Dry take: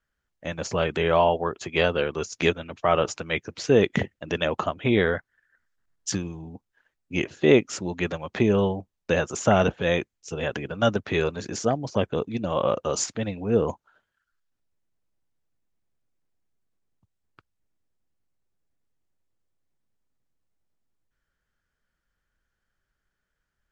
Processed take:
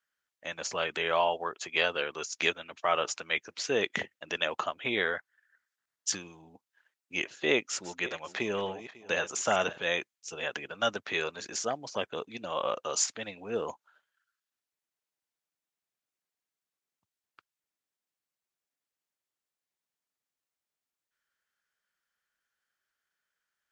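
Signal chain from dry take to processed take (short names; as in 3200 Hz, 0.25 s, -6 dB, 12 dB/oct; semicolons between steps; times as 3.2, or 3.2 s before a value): 7.54–9.78 regenerating reverse delay 0.274 s, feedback 41%, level -13.5 dB; HPF 1400 Hz 6 dB/oct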